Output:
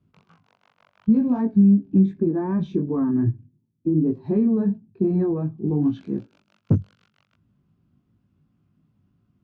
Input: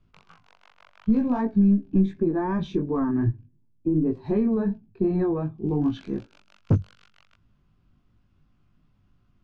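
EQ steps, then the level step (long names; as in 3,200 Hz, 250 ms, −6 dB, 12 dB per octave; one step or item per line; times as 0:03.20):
high-pass filter 74 Hz
parametric band 190 Hz +11 dB 3 octaves
−7.0 dB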